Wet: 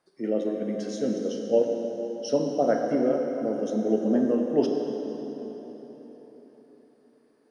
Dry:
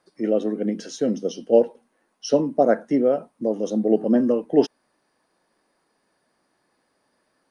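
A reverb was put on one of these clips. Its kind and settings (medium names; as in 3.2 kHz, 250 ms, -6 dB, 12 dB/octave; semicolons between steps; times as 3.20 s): plate-style reverb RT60 4.3 s, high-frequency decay 0.75×, DRR 1 dB; trim -6.5 dB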